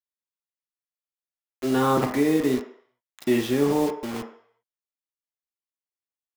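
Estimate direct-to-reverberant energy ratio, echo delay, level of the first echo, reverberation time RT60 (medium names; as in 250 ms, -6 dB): 3.0 dB, no echo, no echo, 0.60 s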